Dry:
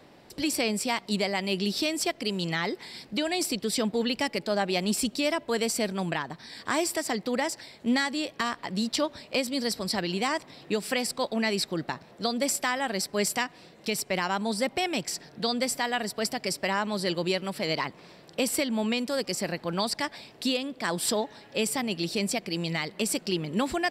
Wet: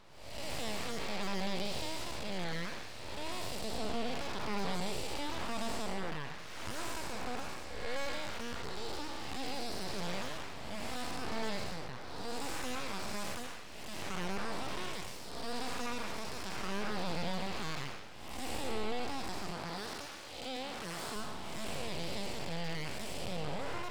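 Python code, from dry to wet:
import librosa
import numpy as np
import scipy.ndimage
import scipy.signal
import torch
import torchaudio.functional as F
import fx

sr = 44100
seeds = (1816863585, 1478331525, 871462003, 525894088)

y = fx.spec_blur(x, sr, span_ms=348.0)
y = fx.high_shelf(y, sr, hz=7000.0, db=-11.5)
y = np.abs(y)
y = fx.low_shelf(y, sr, hz=80.0, db=-10.5, at=(19.52, 21.16))
y = F.gain(torch.from_numpy(y), -1.0).numpy()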